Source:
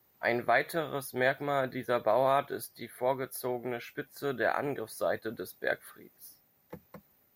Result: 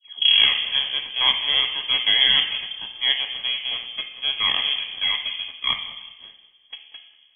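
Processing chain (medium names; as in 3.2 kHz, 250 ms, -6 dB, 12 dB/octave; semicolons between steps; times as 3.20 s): tape start-up on the opening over 0.92 s; full-wave rectifier; thinning echo 190 ms, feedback 34%, level -17 dB; on a send at -4 dB: reverberation RT60 1.1 s, pre-delay 3 ms; on the sum: frequency inversion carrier 3.3 kHz; Butterworth band-stop 1.4 kHz, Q 5.3; trim +5.5 dB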